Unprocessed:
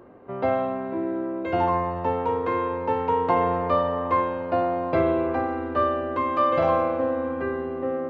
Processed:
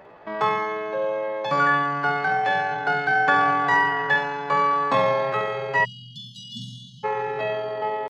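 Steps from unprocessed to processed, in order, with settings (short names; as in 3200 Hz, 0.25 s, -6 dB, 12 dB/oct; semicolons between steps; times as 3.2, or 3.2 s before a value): flutter echo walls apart 11 m, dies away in 0.52 s; pitch shift +8.5 st; spectral delete 5.84–7.04, 240–2800 Hz; gain +1.5 dB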